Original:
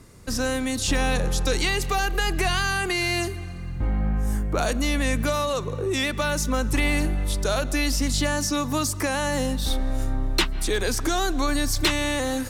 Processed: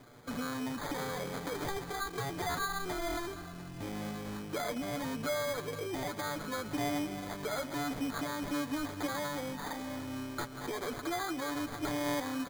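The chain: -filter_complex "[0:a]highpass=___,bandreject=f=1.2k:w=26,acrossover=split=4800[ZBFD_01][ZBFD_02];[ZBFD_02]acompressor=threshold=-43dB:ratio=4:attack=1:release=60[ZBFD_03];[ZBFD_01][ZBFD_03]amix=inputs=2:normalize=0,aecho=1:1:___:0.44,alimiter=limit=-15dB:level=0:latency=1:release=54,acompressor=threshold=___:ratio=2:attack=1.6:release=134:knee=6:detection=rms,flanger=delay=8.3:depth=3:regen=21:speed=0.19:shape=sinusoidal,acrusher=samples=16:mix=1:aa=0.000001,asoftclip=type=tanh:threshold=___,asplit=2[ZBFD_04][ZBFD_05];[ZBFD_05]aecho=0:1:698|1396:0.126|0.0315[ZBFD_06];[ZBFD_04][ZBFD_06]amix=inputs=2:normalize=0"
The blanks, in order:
200, 6.9, -31dB, -25dB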